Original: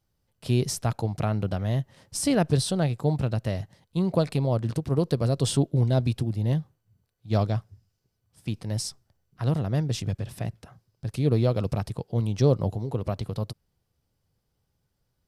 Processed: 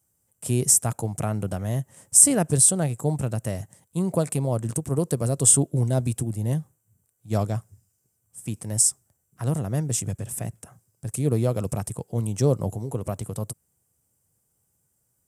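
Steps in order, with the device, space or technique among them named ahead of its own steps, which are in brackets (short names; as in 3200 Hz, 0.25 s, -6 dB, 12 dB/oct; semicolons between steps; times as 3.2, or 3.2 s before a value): budget condenser microphone (HPF 77 Hz; resonant high shelf 5900 Hz +12 dB, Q 3)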